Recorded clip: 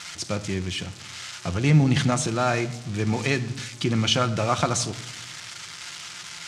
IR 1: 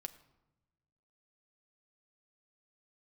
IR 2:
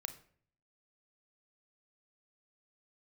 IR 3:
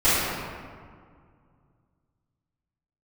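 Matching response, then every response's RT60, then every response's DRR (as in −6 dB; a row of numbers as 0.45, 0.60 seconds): 1; 1.0, 0.55, 2.0 seconds; 8.0, 7.5, −16.0 decibels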